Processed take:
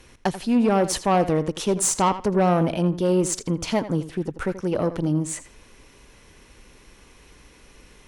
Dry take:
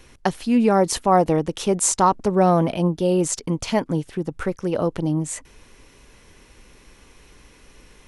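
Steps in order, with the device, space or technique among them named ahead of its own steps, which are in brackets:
rockabilly slapback (tube saturation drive 13 dB, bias 0.25; tape delay 83 ms, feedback 20%, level −12 dB, low-pass 5,900 Hz)

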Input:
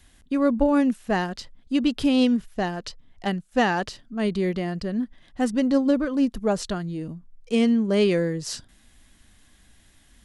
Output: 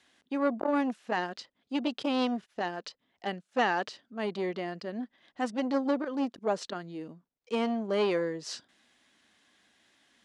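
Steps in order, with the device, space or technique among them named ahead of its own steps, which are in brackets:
public-address speaker with an overloaded transformer (saturating transformer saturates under 530 Hz; band-pass filter 320–5,500 Hz)
level −3.5 dB

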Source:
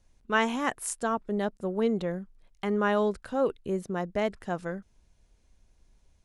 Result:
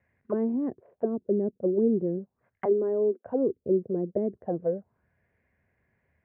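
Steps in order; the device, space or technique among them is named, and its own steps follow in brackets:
0:02.65–0:03.25: Butterworth high-pass 230 Hz 72 dB per octave
envelope filter bass rig (envelope-controlled low-pass 340–2,000 Hz down, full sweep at −27 dBFS; loudspeaker in its box 89–2,300 Hz, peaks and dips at 190 Hz −3 dB, 310 Hz −7 dB, 890 Hz −6 dB, 1,300 Hz −8 dB)
level +1 dB

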